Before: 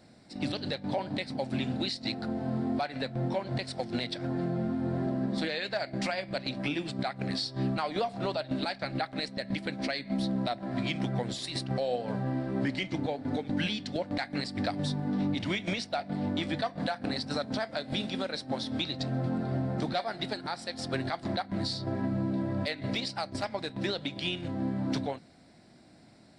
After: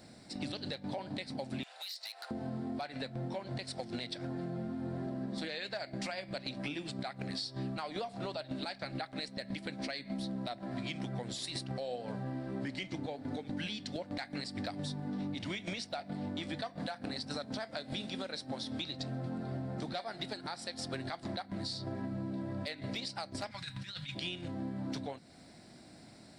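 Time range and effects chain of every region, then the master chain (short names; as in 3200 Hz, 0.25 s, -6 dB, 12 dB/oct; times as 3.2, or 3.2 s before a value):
1.63–2.31 Bessel high-pass 1100 Hz, order 8 + compressor 3:1, threshold -42 dBFS + hard clip -39 dBFS
23.51–24.15 EQ curve 160 Hz 0 dB, 400 Hz -25 dB, 1500 Hz +2 dB + negative-ratio compressor -39 dBFS, ratio -0.5 + notch comb 220 Hz
whole clip: high shelf 5300 Hz +7 dB; compressor 2.5:1, threshold -42 dBFS; gain +1.5 dB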